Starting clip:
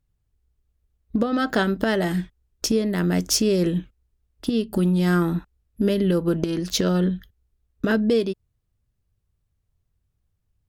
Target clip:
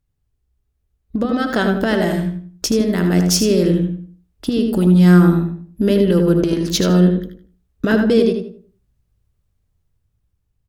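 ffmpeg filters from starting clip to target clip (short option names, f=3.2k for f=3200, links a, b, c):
-filter_complex "[0:a]asplit=2[a][b];[b]aecho=0:1:78|156|234:0.355|0.0674|0.0128[c];[a][c]amix=inputs=2:normalize=0,dynaudnorm=f=340:g=9:m=5dB,asplit=2[d][e];[e]adelay=95,lowpass=f=870:p=1,volume=-3.5dB,asplit=2[f][g];[g]adelay=95,lowpass=f=870:p=1,volume=0.33,asplit=2[h][i];[i]adelay=95,lowpass=f=870:p=1,volume=0.33,asplit=2[j][k];[k]adelay=95,lowpass=f=870:p=1,volume=0.33[l];[f][h][j][l]amix=inputs=4:normalize=0[m];[d][m]amix=inputs=2:normalize=0"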